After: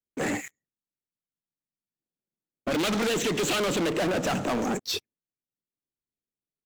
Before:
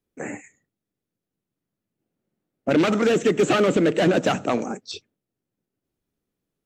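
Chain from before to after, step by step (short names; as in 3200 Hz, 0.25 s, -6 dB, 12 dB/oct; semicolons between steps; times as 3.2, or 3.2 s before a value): 2.72–3.9 bell 4000 Hz +13.5 dB 1.4 oct; compressor, threshold -23 dBFS, peak gain reduction 10.5 dB; sample leveller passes 5; gain -9 dB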